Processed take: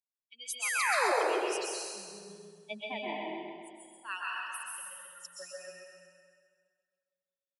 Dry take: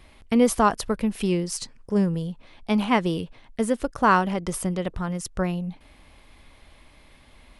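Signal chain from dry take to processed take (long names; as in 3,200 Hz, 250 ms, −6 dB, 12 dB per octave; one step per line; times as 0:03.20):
spectral dynamics exaggerated over time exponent 3
0:02.91–0:04.05: downward compressor, threshold −35 dBFS, peak gain reduction 12 dB
auto-filter high-pass saw down 0.3 Hz 390–5,100 Hz
0:00.62–0:01.12: sound drawn into the spectrogram fall 330–2,700 Hz −28 dBFS
on a send: repeating echo 132 ms, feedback 46%, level −5.5 dB
on the sum: dense smooth reverb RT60 1.9 s, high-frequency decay 0.8×, pre-delay 110 ms, DRR −4.5 dB
level −6 dB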